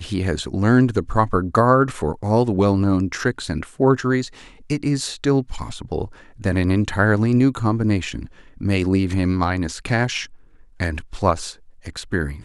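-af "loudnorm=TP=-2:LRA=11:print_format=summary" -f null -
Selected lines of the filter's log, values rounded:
Input Integrated:    -20.9 LUFS
Input True Peak:      -2.2 dBTP
Input LRA:             5.9 LU
Input Threshold:     -31.5 LUFS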